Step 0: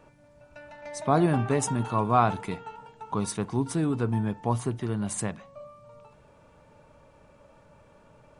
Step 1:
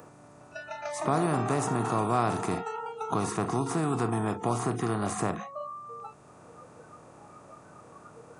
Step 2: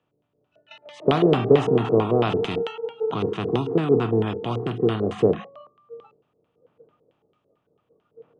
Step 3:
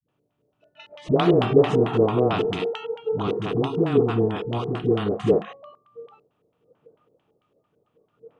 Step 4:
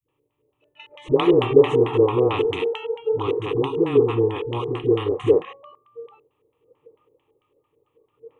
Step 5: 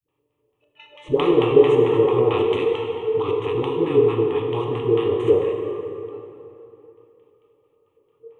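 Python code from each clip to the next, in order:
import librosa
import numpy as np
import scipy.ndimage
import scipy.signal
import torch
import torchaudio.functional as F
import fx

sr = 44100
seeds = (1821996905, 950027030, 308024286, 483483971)

y1 = fx.bin_compress(x, sr, power=0.4)
y1 = fx.noise_reduce_blind(y1, sr, reduce_db=25)
y1 = fx.band_squash(y1, sr, depth_pct=40)
y1 = F.gain(torch.from_numpy(y1), -6.5).numpy()
y2 = fx.low_shelf(y1, sr, hz=370.0, db=5.0)
y2 = fx.filter_lfo_lowpass(y2, sr, shape='square', hz=4.5, low_hz=460.0, high_hz=3100.0, q=6.5)
y2 = fx.band_widen(y2, sr, depth_pct=100)
y3 = fx.dispersion(y2, sr, late='highs', ms=87.0, hz=310.0)
y4 = fx.fixed_phaser(y3, sr, hz=1000.0, stages=8)
y4 = F.gain(torch.from_numpy(y4), 3.5).numpy()
y5 = fx.rev_plate(y4, sr, seeds[0], rt60_s=3.0, hf_ratio=0.65, predelay_ms=0, drr_db=1.0)
y5 = F.gain(torch.from_numpy(y5), -2.5).numpy()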